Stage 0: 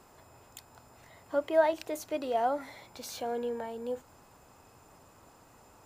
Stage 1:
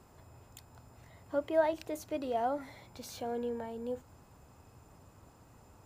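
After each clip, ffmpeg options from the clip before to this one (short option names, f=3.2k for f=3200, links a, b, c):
-af "equalizer=f=77:w=0.36:g=11.5,volume=-5dB"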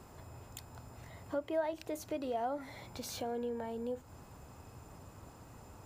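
-af "acompressor=threshold=-45dB:ratio=2,volume=5dB"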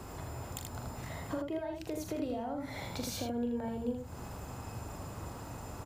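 -filter_complex "[0:a]acrossover=split=250[a][b];[b]acompressor=threshold=-47dB:ratio=10[c];[a][c]amix=inputs=2:normalize=0,aecho=1:1:41|80:0.422|0.631,volume=8dB"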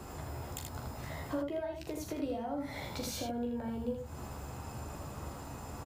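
-filter_complex "[0:a]asplit=2[a][b];[b]adelay=14,volume=-5.5dB[c];[a][c]amix=inputs=2:normalize=0,volume=-1dB"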